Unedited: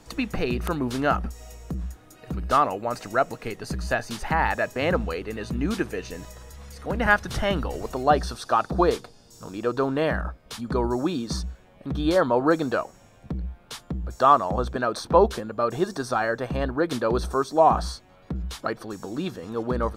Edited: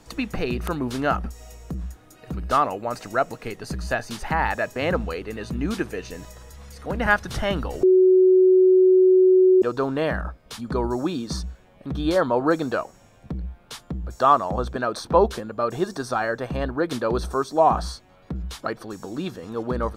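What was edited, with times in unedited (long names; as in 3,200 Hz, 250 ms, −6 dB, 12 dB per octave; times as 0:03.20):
0:07.83–0:09.62: beep over 372 Hz −11.5 dBFS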